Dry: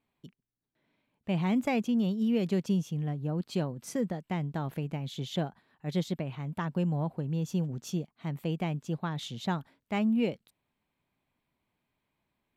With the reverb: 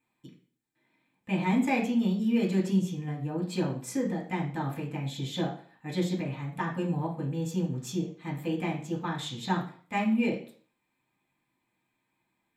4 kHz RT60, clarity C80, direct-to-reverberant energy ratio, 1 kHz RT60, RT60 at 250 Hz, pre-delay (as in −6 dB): 0.40 s, 13.0 dB, −4.5 dB, 0.50 s, 0.45 s, 3 ms